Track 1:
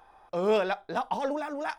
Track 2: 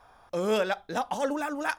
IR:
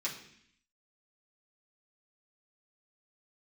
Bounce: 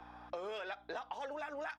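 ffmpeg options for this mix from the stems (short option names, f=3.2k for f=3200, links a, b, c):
-filter_complex "[0:a]acompressor=threshold=-28dB:ratio=6,volume=2dB[a];[1:a]highpass=f=1.3k:w=0.5412,highpass=f=1.3k:w=1.3066,aeval=exprs='val(0)+0.01*(sin(2*PI*60*n/s)+sin(2*PI*2*60*n/s)/2+sin(2*PI*3*60*n/s)/3+sin(2*PI*4*60*n/s)/4+sin(2*PI*5*60*n/s)/5)':c=same,adelay=6.2,volume=-0.5dB[b];[a][b]amix=inputs=2:normalize=0,acrossover=split=350 5000:gain=0.0891 1 0.112[c][d][e];[c][d][e]amix=inputs=3:normalize=0,acompressor=threshold=-39dB:ratio=12"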